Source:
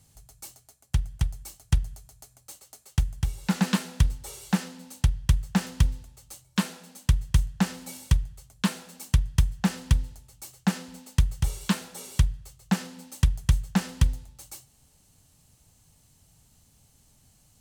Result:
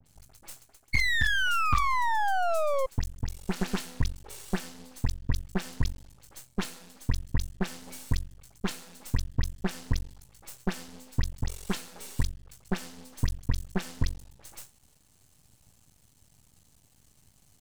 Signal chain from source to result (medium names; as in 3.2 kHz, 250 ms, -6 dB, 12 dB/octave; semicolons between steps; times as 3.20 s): in parallel at 0 dB: compression, threshold -31 dBFS, peak gain reduction 16 dB; on the sum: painted sound fall, 0.90–2.86 s, 520–2200 Hz -18 dBFS; phase dispersion highs, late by 63 ms, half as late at 2.3 kHz; half-wave rectifier; trim -4 dB